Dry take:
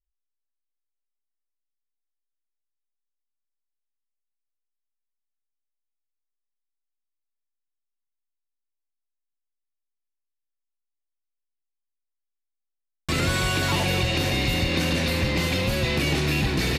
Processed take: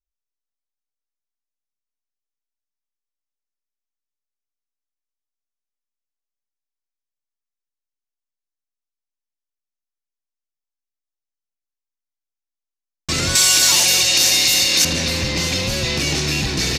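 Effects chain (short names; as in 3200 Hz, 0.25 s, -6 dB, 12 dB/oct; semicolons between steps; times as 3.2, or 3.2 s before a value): 13.35–14.85 RIAA curve recording; sample leveller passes 1; bell 6000 Hz +14 dB 1.1 oct; mismatched tape noise reduction decoder only; gain -3 dB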